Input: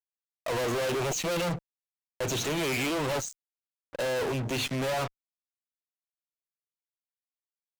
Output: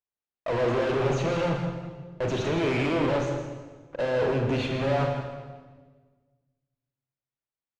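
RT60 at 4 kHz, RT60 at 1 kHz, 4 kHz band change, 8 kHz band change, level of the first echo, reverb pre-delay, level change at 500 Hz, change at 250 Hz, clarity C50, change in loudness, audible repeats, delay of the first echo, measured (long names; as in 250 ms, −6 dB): 1.2 s, 1.3 s, −4.0 dB, −12.0 dB, −10.0 dB, 28 ms, +5.0 dB, +5.5 dB, 3.5 dB, +3.0 dB, 1, 162 ms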